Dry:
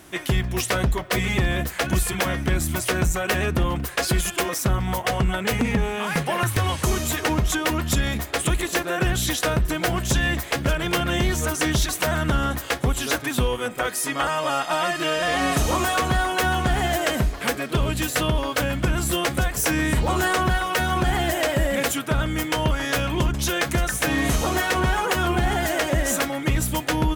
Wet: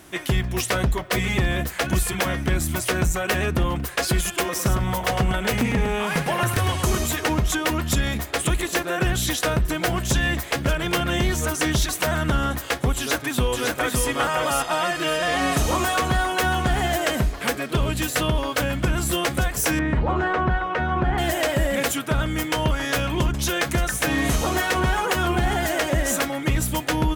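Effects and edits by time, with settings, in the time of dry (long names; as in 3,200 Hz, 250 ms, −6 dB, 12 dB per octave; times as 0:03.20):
0:04.44–0:07.06: single-tap delay 106 ms −7.5 dB
0:12.96–0:14.06: delay throw 560 ms, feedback 25%, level −3 dB
0:19.79–0:21.18: low-pass filter 1,800 Hz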